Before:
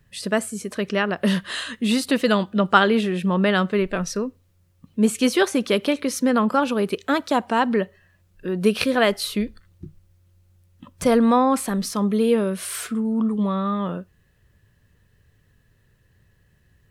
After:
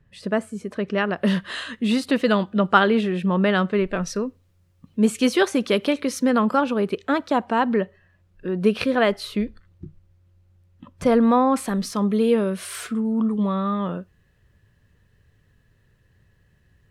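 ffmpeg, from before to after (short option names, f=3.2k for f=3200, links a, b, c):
-af "asetnsamples=n=441:p=0,asendcmd='0.98 lowpass f 3300;4.02 lowpass f 6500;6.61 lowpass f 2400;11.56 lowpass f 5800',lowpass=f=1.4k:p=1"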